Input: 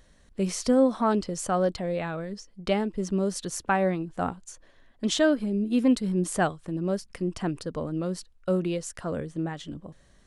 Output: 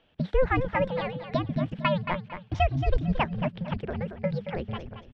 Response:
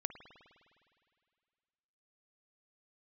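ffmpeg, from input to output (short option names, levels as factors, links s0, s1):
-filter_complex "[0:a]highpass=f=160:t=q:w=0.5412,highpass=f=160:t=q:w=1.307,lowpass=f=2100:t=q:w=0.5176,lowpass=f=2100:t=q:w=0.7071,lowpass=f=2100:t=q:w=1.932,afreqshift=-270,bandreject=f=50:t=h:w=6,bandreject=f=100:t=h:w=6,asplit=2[s0][s1];[s1]aecho=0:1:451|902|1353:0.355|0.0887|0.0222[s2];[s0][s2]amix=inputs=2:normalize=0,asetrate=88200,aresample=44100"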